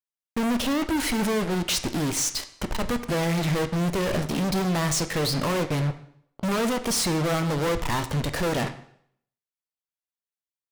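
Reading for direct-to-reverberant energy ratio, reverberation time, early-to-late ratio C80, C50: 9.0 dB, 0.65 s, 15.5 dB, 12.5 dB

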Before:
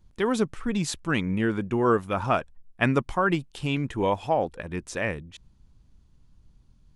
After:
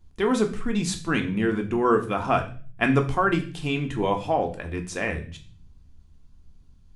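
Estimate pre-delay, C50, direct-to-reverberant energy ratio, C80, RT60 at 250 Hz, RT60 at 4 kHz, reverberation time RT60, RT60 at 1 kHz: 3 ms, 12.5 dB, 4.0 dB, 16.5 dB, 0.75 s, 0.45 s, 0.40 s, 0.35 s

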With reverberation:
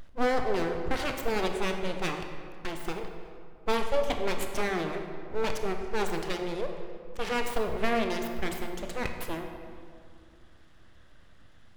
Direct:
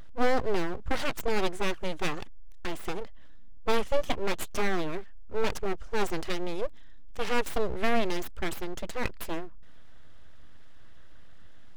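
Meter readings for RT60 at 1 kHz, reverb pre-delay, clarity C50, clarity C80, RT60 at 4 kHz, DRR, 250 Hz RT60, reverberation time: 2.2 s, 25 ms, 5.5 dB, 7.0 dB, 1.3 s, 4.5 dB, 2.7 s, 2.3 s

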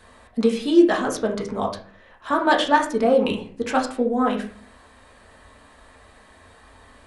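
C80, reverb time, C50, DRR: 13.5 dB, 0.45 s, 9.0 dB, -1.0 dB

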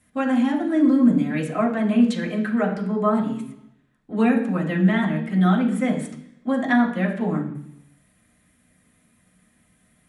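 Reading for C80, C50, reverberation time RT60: 11.0 dB, 8.0 dB, 0.70 s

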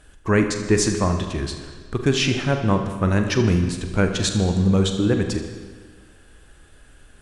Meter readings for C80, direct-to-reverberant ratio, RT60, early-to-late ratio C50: 8.0 dB, 5.0 dB, 1.6 s, 7.0 dB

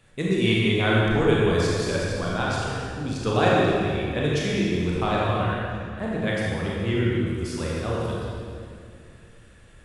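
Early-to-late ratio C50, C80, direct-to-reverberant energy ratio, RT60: -3.0 dB, -1.0 dB, -5.0 dB, 2.4 s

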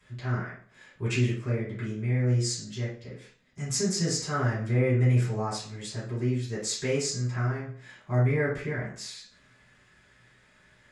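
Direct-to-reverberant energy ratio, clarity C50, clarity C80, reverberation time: -11.0 dB, 4.5 dB, 10.5 dB, 0.50 s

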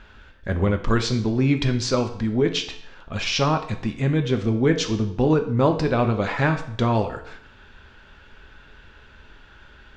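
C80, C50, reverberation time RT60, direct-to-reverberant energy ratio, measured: 14.0 dB, 10.5 dB, 0.65 s, 5.5 dB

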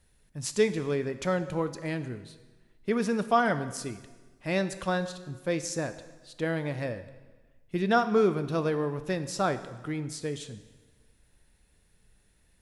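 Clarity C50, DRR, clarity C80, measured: 12.5 dB, 10.5 dB, 14.5 dB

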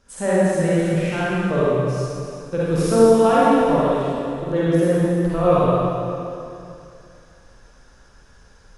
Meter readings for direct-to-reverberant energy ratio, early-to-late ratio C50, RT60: -9.5 dB, -7.5 dB, 2.6 s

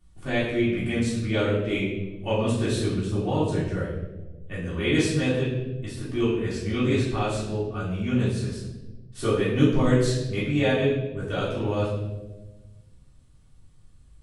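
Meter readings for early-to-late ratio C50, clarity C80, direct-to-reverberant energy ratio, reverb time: 1.5 dB, 4.5 dB, -11.5 dB, 1.2 s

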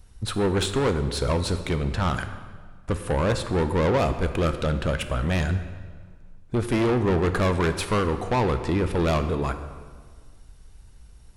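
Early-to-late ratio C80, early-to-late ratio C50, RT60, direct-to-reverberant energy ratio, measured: 11.5 dB, 10.0 dB, 1.6 s, 9.0 dB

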